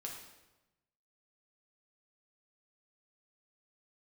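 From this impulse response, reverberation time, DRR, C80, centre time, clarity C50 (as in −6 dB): 1.0 s, −1.0 dB, 6.5 dB, 40 ms, 4.0 dB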